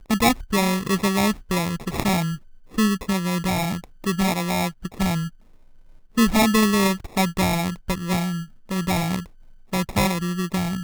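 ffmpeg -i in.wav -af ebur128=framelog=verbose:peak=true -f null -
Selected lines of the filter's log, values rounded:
Integrated loudness:
  I:         -22.8 LUFS
  Threshold: -33.2 LUFS
Loudness range:
  LRA:         3.4 LU
  Threshold: -43.2 LUFS
  LRA low:   -25.2 LUFS
  LRA high:  -21.8 LUFS
True peak:
  Peak:       -3.6 dBFS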